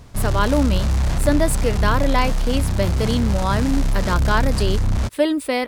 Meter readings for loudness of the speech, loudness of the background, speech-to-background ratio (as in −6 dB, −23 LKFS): −22.5 LKFS, −22.5 LKFS, 0.0 dB